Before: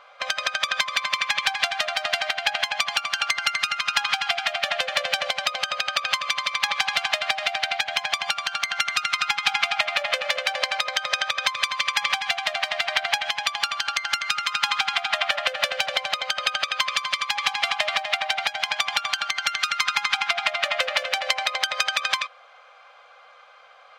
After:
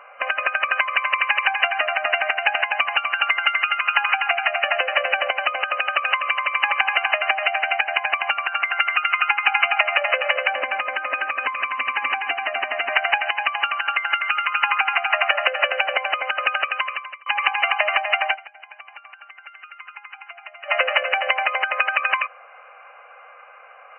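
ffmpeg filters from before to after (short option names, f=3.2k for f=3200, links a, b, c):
-filter_complex "[0:a]asettb=1/sr,asplit=3[a][b][c];[a]atrim=end=10.544[d];[b]atrim=start=10.54:end=12.9,asetpts=PTS-STARTPTS,afade=t=in:d=0.004:c=qsin,afade=t=out:st=2.356:d=0.004:c=qsin,aeval=exprs='(tanh(7.94*val(0)+0.4)-tanh(0.4))/7.94':c=same[e];[c]atrim=start=12.896[f];[d][e]acrossfade=d=0.004:c1=hsin:c2=qsin[g];[g][f]acrossfade=d=0.004:c1=qsin:c2=hsin,asplit=4[h][i][j][k];[h]atrim=end=17.26,asetpts=PTS-STARTPTS,afade=t=out:st=16.6:d=0.66[l];[i]atrim=start=17.26:end=18.52,asetpts=PTS-STARTPTS,afade=t=in:d=0.004:c=hsin,afade=t=out:st=1.07:d=0.19:c=exp:silence=0.0944061[m];[j]atrim=start=18.52:end=20.51,asetpts=PTS-STARTPTS,volume=-20.5dB[n];[k]atrim=start=20.51,asetpts=PTS-STARTPTS,afade=t=in:d=0.19:c=exp:silence=0.0944061[o];[l][m][n][o]concat=n=4:v=0:a=1,afftfilt=real='re*between(b*sr/4096,240,3000)':imag='im*between(b*sr/4096,240,3000)':win_size=4096:overlap=0.75,volume=5.5dB"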